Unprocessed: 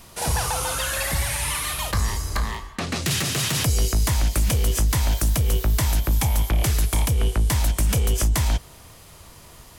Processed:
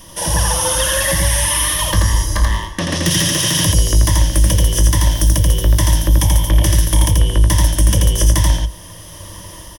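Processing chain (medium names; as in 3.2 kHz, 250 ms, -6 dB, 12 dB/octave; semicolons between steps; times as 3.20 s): in parallel at -3 dB: compression, threshold -28 dBFS, peak gain reduction 11 dB; on the sum: rippled EQ curve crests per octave 1.2, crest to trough 12 dB; delay 84 ms -3 dB; level rider gain up to 3.5 dB; peaking EQ 1.4 kHz -3.5 dB 1.8 oct; trim +1 dB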